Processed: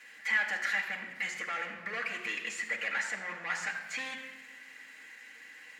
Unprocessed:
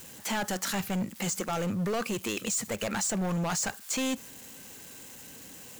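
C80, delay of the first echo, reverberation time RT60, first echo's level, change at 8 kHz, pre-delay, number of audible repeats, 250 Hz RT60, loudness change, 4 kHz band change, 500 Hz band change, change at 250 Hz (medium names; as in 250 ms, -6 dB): 8.0 dB, no echo, 1.2 s, no echo, -15.0 dB, 4 ms, no echo, 1.9 s, -3.0 dB, -5.5 dB, -13.0 dB, -20.5 dB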